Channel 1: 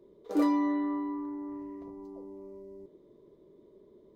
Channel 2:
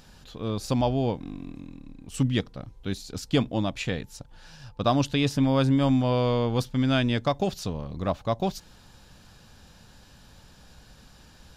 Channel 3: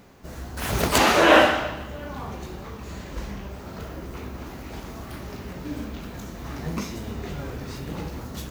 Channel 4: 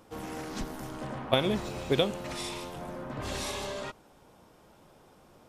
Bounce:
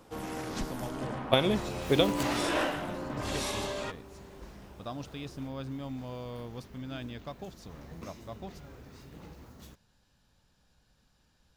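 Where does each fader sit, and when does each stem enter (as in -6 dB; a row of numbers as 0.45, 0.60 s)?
-7.5, -17.0, -16.0, +1.0 dB; 1.60, 0.00, 1.25, 0.00 s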